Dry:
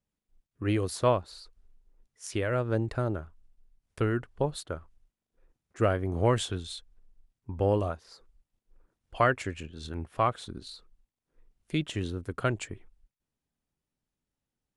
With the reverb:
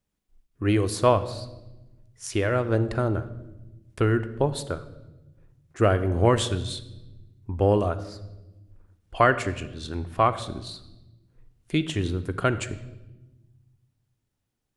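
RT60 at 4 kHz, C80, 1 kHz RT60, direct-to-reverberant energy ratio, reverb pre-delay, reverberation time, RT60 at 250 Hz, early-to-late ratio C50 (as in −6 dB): 0.85 s, 16.0 dB, 0.90 s, 11.5 dB, 3 ms, 1.0 s, 1.8 s, 14.0 dB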